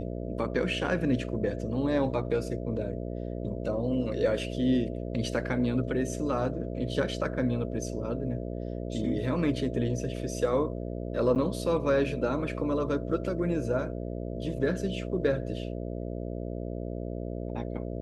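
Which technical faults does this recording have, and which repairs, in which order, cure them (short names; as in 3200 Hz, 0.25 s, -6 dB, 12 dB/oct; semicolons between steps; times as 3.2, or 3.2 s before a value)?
buzz 60 Hz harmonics 11 -35 dBFS
11.35–11.36 gap 8.9 ms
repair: de-hum 60 Hz, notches 11; interpolate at 11.35, 8.9 ms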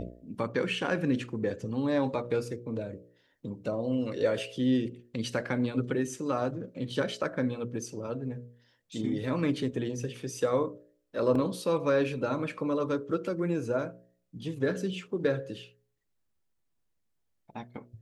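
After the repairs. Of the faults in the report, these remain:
none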